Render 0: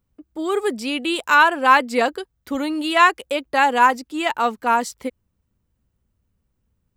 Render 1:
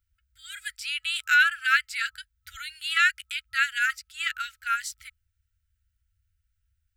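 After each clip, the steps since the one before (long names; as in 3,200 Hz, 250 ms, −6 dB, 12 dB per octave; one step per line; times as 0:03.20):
brick-wall band-stop 100–1,300 Hz
level −2.5 dB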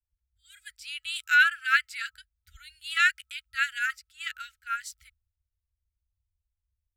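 multiband upward and downward expander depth 70%
level −4.5 dB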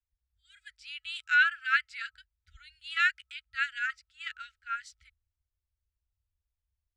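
high-frequency loss of the air 110 metres
level −2.5 dB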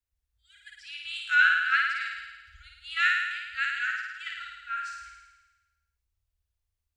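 flutter between parallel walls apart 9.3 metres, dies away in 1.2 s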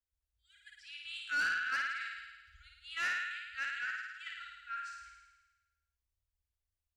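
soft clipping −21 dBFS, distortion −11 dB
level −7.5 dB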